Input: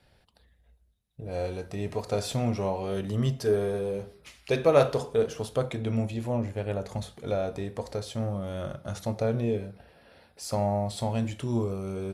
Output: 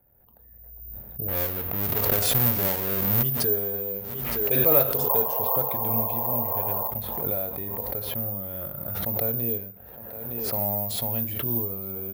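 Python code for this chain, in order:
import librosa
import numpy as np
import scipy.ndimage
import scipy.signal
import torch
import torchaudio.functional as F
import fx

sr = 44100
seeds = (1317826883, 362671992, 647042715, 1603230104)

y = fx.halfwave_hold(x, sr, at=(1.28, 3.23))
y = fx.env_lowpass(y, sr, base_hz=1000.0, full_db=-21.5)
y = fx.spec_paint(y, sr, seeds[0], shape='noise', start_s=5.09, length_s=1.82, low_hz=430.0, high_hz=1100.0, level_db=-29.0)
y = fx.high_shelf(y, sr, hz=5600.0, db=7.5, at=(10.44, 11.05))
y = fx.echo_thinned(y, sr, ms=914, feedback_pct=32, hz=160.0, wet_db=-22.5)
y = (np.kron(y[::3], np.eye(3)[0]) * 3)[:len(y)]
y = fx.pre_swell(y, sr, db_per_s=29.0)
y = y * 10.0 ** (-5.0 / 20.0)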